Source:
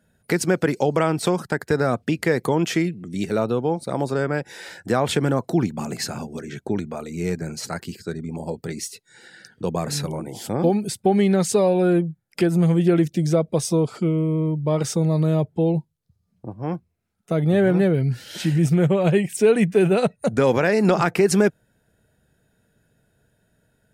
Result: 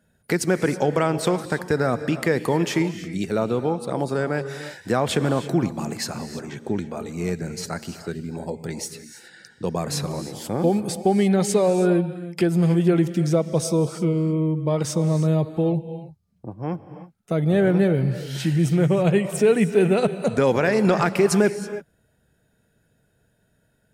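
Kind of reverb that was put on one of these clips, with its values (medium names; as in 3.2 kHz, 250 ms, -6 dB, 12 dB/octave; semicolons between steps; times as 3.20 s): gated-style reverb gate 350 ms rising, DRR 11 dB; trim -1 dB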